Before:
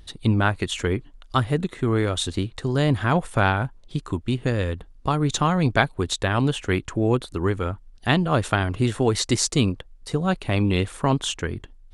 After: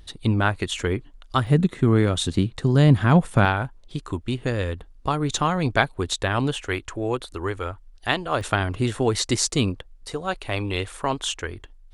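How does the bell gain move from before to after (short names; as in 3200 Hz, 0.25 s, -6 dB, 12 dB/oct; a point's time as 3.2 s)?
bell 170 Hz 1.4 oct
-2 dB
from 1.47 s +7.5 dB
from 3.45 s -4 dB
from 6.56 s -14.5 dB
from 8.41 s -3 dB
from 10.1 s -14 dB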